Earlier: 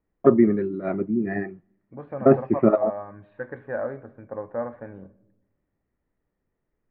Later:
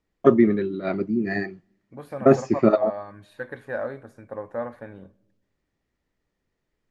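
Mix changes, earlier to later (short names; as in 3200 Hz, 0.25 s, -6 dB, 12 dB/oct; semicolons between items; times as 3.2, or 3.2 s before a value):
second voice: send -6.0 dB; master: remove Gaussian blur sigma 4.1 samples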